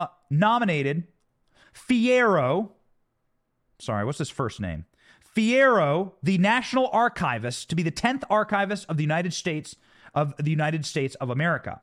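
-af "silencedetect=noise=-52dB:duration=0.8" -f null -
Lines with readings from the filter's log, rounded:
silence_start: 2.72
silence_end: 3.80 | silence_duration: 1.07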